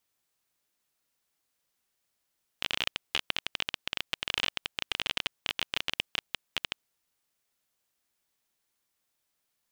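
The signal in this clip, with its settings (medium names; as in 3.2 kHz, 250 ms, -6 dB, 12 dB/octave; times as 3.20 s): random clicks 21 per s -11 dBFS 4.26 s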